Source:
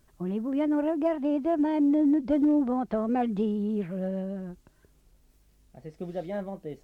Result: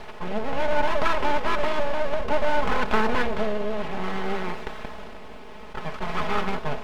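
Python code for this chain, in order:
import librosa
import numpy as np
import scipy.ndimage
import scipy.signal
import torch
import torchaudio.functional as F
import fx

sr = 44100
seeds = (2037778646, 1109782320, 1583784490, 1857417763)

y = fx.bin_compress(x, sr, power=0.4)
y = y + 10.0 ** (-12.0 / 20.0) * np.pad(y, (int(184 * sr / 1000.0), 0))[:len(y)]
y = fx.rotary(y, sr, hz=0.6)
y = np.abs(y)
y = fx.peak_eq(y, sr, hz=2800.0, db=7.5, octaves=2.5)
y = y + 0.65 * np.pad(y, (int(4.7 * sr / 1000.0), 0))[:len(y)]
y = fx.attack_slew(y, sr, db_per_s=340.0)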